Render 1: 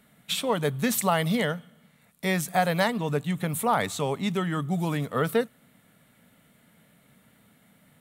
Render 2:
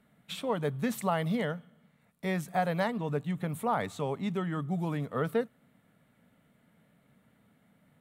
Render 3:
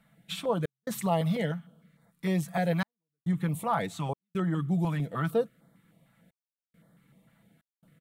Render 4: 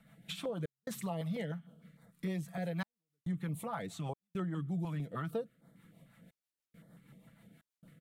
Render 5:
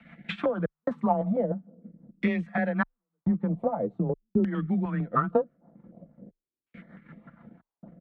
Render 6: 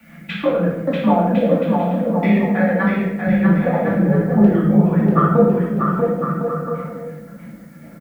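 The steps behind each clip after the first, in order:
treble shelf 2.7 kHz -11 dB; trim -4.5 dB
comb 6 ms, depth 51%; trance gate "xxx.xxxxxxxxx..x" 69 bpm -60 dB; step-sequenced notch 6.6 Hz 370–2600 Hz; trim +2 dB
compression 2:1, threshold -46 dBFS, peak gain reduction 13.5 dB; rotary cabinet horn 6.3 Hz; trim +4 dB
LFO low-pass saw down 0.45 Hz 290–2500 Hz; transient shaper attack +5 dB, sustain -5 dB; frequency shift +20 Hz; trim +8 dB
added noise blue -67 dBFS; bouncing-ball echo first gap 640 ms, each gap 0.65×, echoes 5; reverberation RT60 0.90 s, pre-delay 3 ms, DRR -6 dB; trim +1.5 dB

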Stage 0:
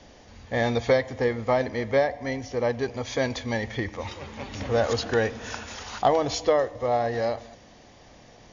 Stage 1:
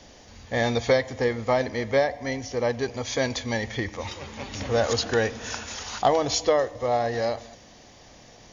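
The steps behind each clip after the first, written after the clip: treble shelf 5 kHz +10 dB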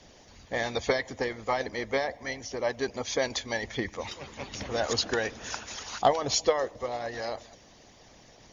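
harmonic-percussive split harmonic -14 dB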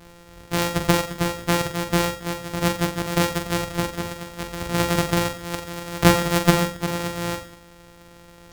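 sorted samples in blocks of 256 samples; on a send: flutter echo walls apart 7.6 m, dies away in 0.39 s; on the sum: trim +7.5 dB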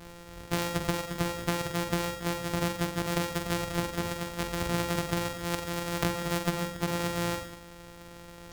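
compression 10:1, threshold -26 dBFS, peak gain reduction 17 dB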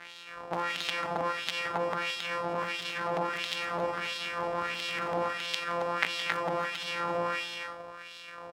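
Chebyshev shaper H 7 -9 dB, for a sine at -9 dBFS; loudspeakers at several distances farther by 58 m -11 dB, 93 m -4 dB; LFO band-pass sine 1.5 Hz 760–3500 Hz; trim +9 dB

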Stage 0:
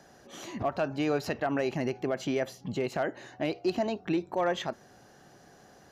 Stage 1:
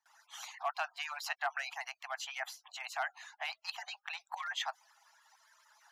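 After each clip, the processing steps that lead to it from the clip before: harmonic-percussive separation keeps percussive; gate with hold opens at -53 dBFS; steep high-pass 750 Hz 72 dB/octave; trim +1 dB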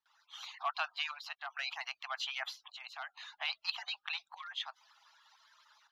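FFT filter 280 Hz 0 dB, 730 Hz -11 dB, 1.2 kHz -2 dB, 1.8 kHz -8 dB, 3.7 kHz +3 dB, 8.8 kHz -20 dB, 13 kHz -14 dB; level rider gain up to 7 dB; square tremolo 0.63 Hz, depth 60%, duty 70%; trim -1 dB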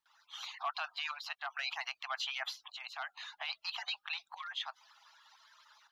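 peak limiter -29.5 dBFS, peak gain reduction 10 dB; trim +2.5 dB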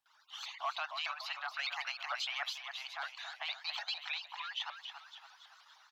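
feedback delay 280 ms, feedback 47%, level -8 dB; vibrato with a chosen wave saw up 6.6 Hz, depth 160 cents

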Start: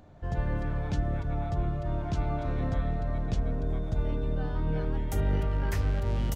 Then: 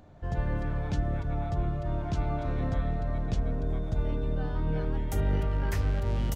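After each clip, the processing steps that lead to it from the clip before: no audible change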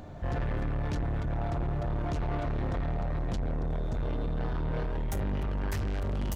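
gain riding; saturation -34 dBFS, distortion -8 dB; trim +6 dB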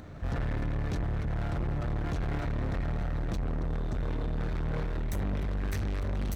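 comb filter that takes the minimum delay 0.49 ms

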